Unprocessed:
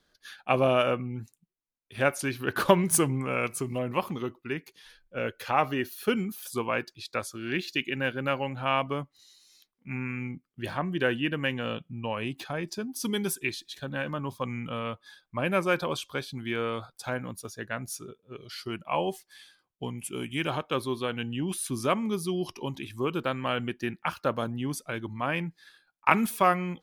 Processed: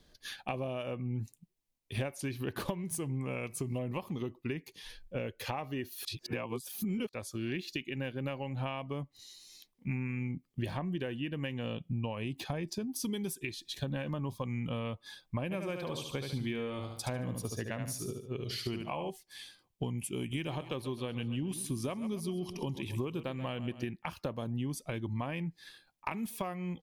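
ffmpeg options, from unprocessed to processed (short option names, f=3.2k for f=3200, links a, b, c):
-filter_complex "[0:a]asplit=3[a][b][c];[a]afade=t=out:st=15.5:d=0.02[d];[b]aecho=1:1:73|146|219|292:0.501|0.165|0.0546|0.018,afade=t=in:st=15.5:d=0.02,afade=t=out:st=19.09:d=0.02[e];[c]afade=t=in:st=19.09:d=0.02[f];[d][e][f]amix=inputs=3:normalize=0,asettb=1/sr,asplit=3[g][h][i];[g]atrim=end=20.194[j];[h]atrim=start=20.19:end=23.85,asetpts=PTS-STARTPTS,afade=t=in:d=0.004:c=qsin,afade=t=out:st=3.656:d=0.004:c=qsin,aecho=1:1:133|266|399|532|665:0.178|0.0925|0.0481|0.025|0.013,atrim=end_sample=161406[k];[i]atrim=start=23.846[l];[j][k]acrossfade=d=0.004:c1=hsin:c2=qsin[m];[m][l]acrossfade=d=0.004:c1=qsin:c2=hsin,asplit=3[n][o][p];[n]atrim=end=6.052[q];[o]atrim=start=6.048:end=7.092,asetpts=PTS-STARTPTS,areverse[r];[p]atrim=start=7.088[s];[q][r]acrossfade=d=0.004:c1=hsin:c2=hsin[t];[t][s]acrossfade=d=0.004:c1=hsin:c2=hsin,equalizer=f=1.4k:t=o:w=0.45:g=-10.5,acompressor=threshold=-40dB:ratio=10,lowshelf=f=170:g=9,volume=4.5dB"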